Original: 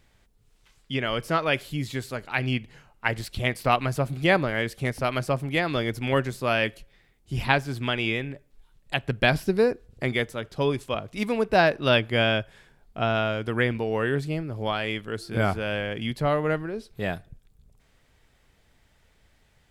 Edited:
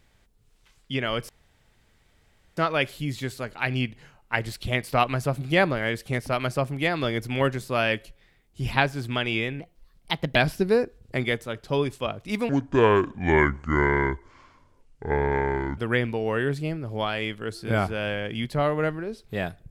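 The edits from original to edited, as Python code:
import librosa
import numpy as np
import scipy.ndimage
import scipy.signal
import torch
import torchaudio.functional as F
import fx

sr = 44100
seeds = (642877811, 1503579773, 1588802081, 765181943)

y = fx.edit(x, sr, fx.insert_room_tone(at_s=1.29, length_s=1.28),
    fx.speed_span(start_s=8.32, length_s=0.92, speed=1.21),
    fx.speed_span(start_s=11.37, length_s=2.07, speed=0.63), tone=tone)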